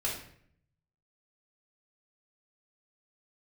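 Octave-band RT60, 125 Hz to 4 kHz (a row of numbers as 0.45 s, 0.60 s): 1.1 s, 0.85 s, 0.70 s, 0.55 s, 0.60 s, 0.50 s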